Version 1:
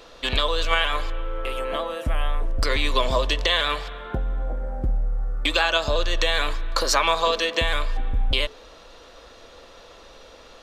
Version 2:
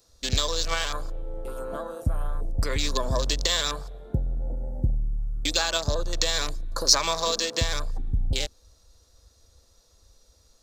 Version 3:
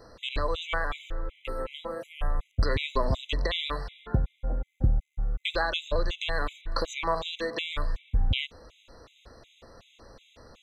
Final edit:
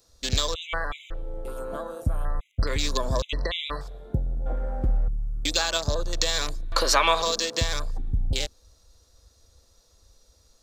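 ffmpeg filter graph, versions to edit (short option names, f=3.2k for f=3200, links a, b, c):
-filter_complex "[2:a]asplit=3[a][b][c];[0:a]asplit=2[d][e];[1:a]asplit=6[f][g][h][i][j][k];[f]atrim=end=0.542[l];[a]atrim=start=0.538:end=1.142[m];[g]atrim=start=1.138:end=2.252[n];[b]atrim=start=2.248:end=2.672[o];[h]atrim=start=2.668:end=3.222[p];[c]atrim=start=3.218:end=3.812[q];[i]atrim=start=3.808:end=4.462[r];[d]atrim=start=4.458:end=5.082[s];[j]atrim=start=5.078:end=6.722[t];[e]atrim=start=6.718:end=7.222[u];[k]atrim=start=7.218[v];[l][m]acrossfade=d=0.004:c1=hsin:c2=hsin[w];[w][n]acrossfade=d=0.004:c1=hsin:c2=hsin[x];[x][o]acrossfade=d=0.004:c1=hsin:c2=hsin[y];[y][p]acrossfade=d=0.004:c1=hsin:c2=hsin[z];[z][q]acrossfade=d=0.004:c1=hsin:c2=hsin[aa];[aa][r]acrossfade=d=0.004:c1=hsin:c2=hsin[ab];[ab][s]acrossfade=d=0.004:c1=hsin:c2=hsin[ac];[ac][t]acrossfade=d=0.004:c1=hsin:c2=hsin[ad];[ad][u]acrossfade=d=0.004:c1=hsin:c2=hsin[ae];[ae][v]acrossfade=d=0.004:c1=hsin:c2=hsin"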